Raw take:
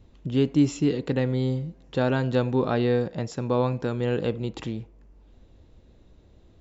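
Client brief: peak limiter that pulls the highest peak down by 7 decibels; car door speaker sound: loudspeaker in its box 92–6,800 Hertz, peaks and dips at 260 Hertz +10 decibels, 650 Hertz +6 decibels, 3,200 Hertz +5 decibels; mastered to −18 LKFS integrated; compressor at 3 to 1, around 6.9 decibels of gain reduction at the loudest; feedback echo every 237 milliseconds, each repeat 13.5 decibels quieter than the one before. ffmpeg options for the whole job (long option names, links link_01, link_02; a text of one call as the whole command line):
ffmpeg -i in.wav -af "acompressor=threshold=-24dB:ratio=3,alimiter=limit=-22dB:level=0:latency=1,highpass=92,equalizer=frequency=260:width_type=q:width=4:gain=10,equalizer=frequency=650:width_type=q:width=4:gain=6,equalizer=frequency=3200:width_type=q:width=4:gain=5,lowpass=frequency=6800:width=0.5412,lowpass=frequency=6800:width=1.3066,aecho=1:1:237|474:0.211|0.0444,volume=9dB" out.wav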